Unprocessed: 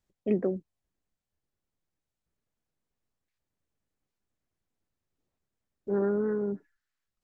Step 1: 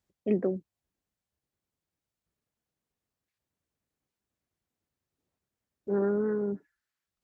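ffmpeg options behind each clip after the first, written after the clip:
-af "highpass=51"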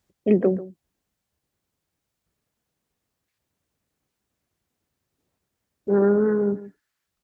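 -filter_complex "[0:a]asplit=2[a][b];[b]adelay=139.9,volume=-16dB,highshelf=f=4k:g=-3.15[c];[a][c]amix=inputs=2:normalize=0,volume=8.5dB"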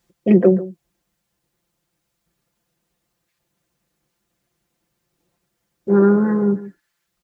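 -af "aecho=1:1:5.8:0.82,volume=4dB"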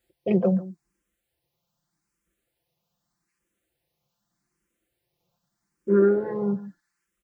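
-filter_complex "[0:a]asplit=2[a][b];[b]afreqshift=0.82[c];[a][c]amix=inputs=2:normalize=1,volume=-3dB"

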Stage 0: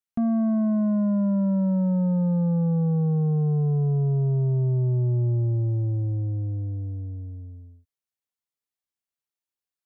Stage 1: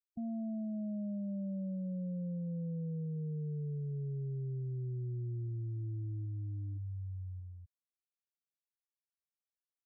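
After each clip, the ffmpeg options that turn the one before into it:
-af "afftfilt=real='re*gte(hypot(re,im),0.0891)':imag='im*gte(hypot(re,im),0.0891)':win_size=1024:overlap=0.75,areverse,acompressor=threshold=-33dB:ratio=5,areverse,volume=-6dB"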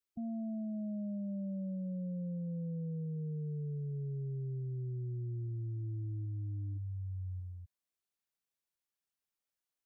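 -af "alimiter=level_in=15.5dB:limit=-24dB:level=0:latency=1,volume=-15.5dB,volume=3dB"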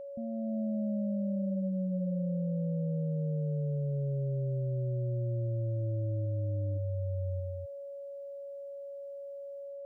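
-af "dynaudnorm=f=300:g=3:m=6dB,aeval=exprs='val(0)+0.01*sin(2*PI*560*n/s)':c=same"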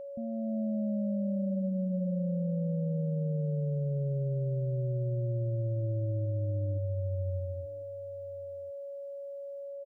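-filter_complex "[0:a]asplit=2[a][b];[b]adelay=1050,volume=-20dB,highshelf=f=4k:g=-23.6[c];[a][c]amix=inputs=2:normalize=0,volume=1dB"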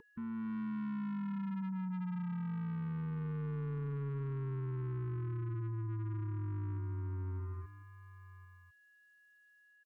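-af "asoftclip=type=tanh:threshold=-37.5dB,asuperstop=centerf=640:order=20:qfactor=1.5,volume=1dB"

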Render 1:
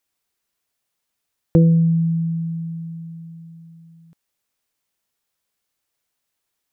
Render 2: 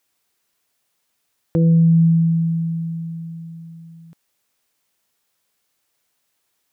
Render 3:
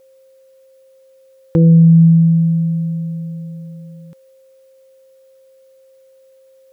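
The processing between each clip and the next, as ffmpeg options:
-af "lowshelf=f=63:g=-9.5,alimiter=level_in=15.5dB:limit=-1dB:release=50:level=0:latency=1,volume=-8.5dB"
-af "aeval=exprs='val(0)+0.00282*sin(2*PI*530*n/s)':c=same,asuperstop=centerf=660:order=4:qfactor=3.5,volume=5.5dB"

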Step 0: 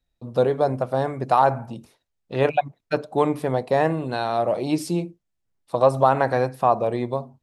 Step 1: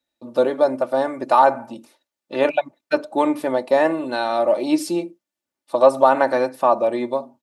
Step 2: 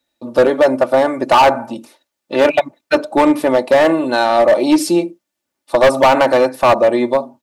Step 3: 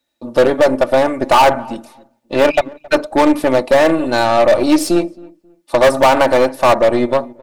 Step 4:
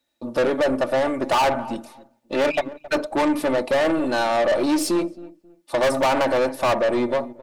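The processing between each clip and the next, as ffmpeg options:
-af "highpass=250,aecho=1:1:3.4:0.64,volume=2dB"
-af "asoftclip=type=hard:threshold=-14.5dB,volume=8.5dB"
-filter_complex "[0:a]aeval=exprs='0.531*(cos(1*acos(clip(val(0)/0.531,-1,1)))-cos(1*PI/2))+0.0668*(cos(4*acos(clip(val(0)/0.531,-1,1)))-cos(4*PI/2))':c=same,asplit=2[a][b];[b]adelay=269,lowpass=f=1.3k:p=1,volume=-22.5dB,asplit=2[c][d];[d]adelay=269,lowpass=f=1.3k:p=1,volume=0.26[e];[a][c][e]amix=inputs=3:normalize=0"
-af "asoftclip=type=tanh:threshold=-13.5dB,volume=-2.5dB"

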